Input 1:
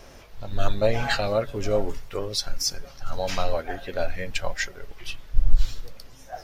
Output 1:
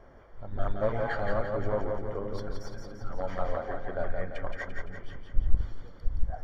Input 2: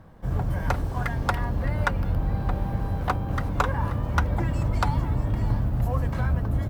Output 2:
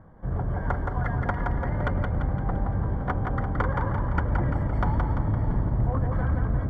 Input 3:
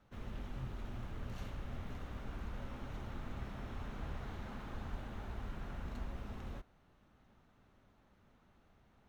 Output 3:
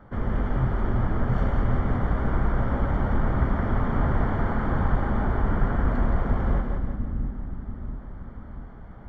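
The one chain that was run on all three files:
one-sided fold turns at -20 dBFS; polynomial smoothing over 41 samples; on a send: split-band echo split 310 Hz, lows 0.688 s, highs 0.171 s, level -4 dB; on the sum: normalise peaks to -9 dBFS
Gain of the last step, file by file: -5.5, -1.5, +19.0 dB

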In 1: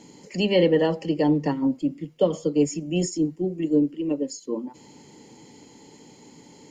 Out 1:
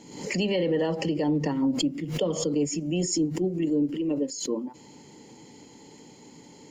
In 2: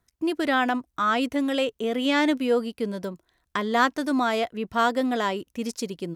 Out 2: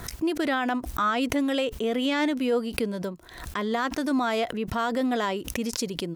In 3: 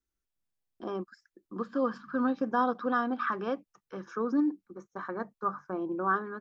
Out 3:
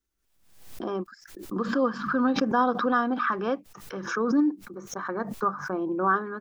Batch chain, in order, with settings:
limiter -17 dBFS; backwards sustainer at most 71 dB/s; match loudness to -27 LUFS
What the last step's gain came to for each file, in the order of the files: -0.5, 0.0, +4.5 dB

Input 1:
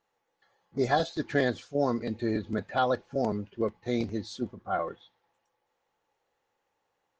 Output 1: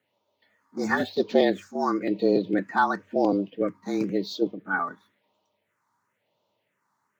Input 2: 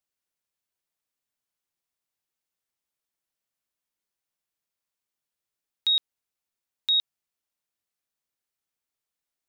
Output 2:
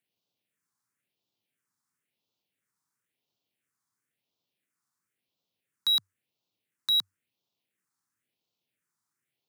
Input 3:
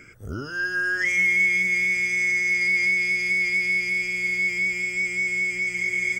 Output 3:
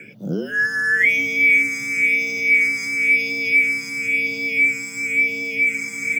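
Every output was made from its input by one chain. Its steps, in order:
median filter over 3 samples; phaser stages 4, 0.97 Hz, lowest notch 440–1700 Hz; frequency shift +94 Hz; gain +7.5 dB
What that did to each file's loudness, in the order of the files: +4.5, -2.0, +4.0 LU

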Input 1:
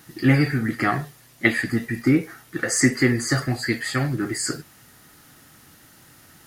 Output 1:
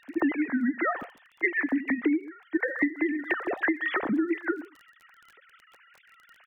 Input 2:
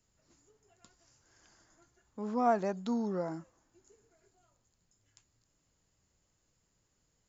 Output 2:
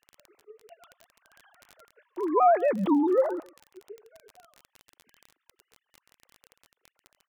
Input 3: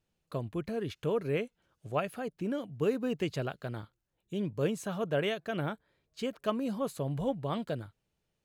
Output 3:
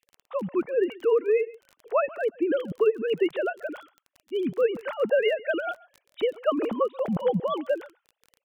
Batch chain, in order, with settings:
sine-wave speech; outdoor echo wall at 23 m, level -23 dB; crackle 26/s -46 dBFS; compressor 16:1, threshold -28 dBFS; normalise peaks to -12 dBFS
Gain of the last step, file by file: +5.5, +12.0, +10.5 dB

